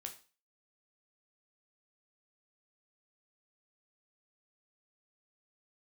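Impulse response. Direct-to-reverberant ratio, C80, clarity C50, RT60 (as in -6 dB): 3.5 dB, 17.0 dB, 12.0 dB, 0.35 s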